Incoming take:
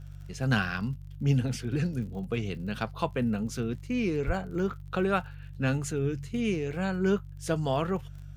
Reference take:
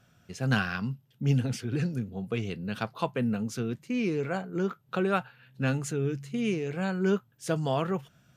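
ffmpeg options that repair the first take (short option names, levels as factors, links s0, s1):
-filter_complex "[0:a]adeclick=t=4,bandreject=f=48.3:t=h:w=4,bandreject=f=96.6:t=h:w=4,bandreject=f=144.9:t=h:w=4,asplit=3[s0][s1][s2];[s0]afade=t=out:st=4.26:d=0.02[s3];[s1]highpass=f=140:w=0.5412,highpass=f=140:w=1.3066,afade=t=in:st=4.26:d=0.02,afade=t=out:st=4.38:d=0.02[s4];[s2]afade=t=in:st=4.38:d=0.02[s5];[s3][s4][s5]amix=inputs=3:normalize=0"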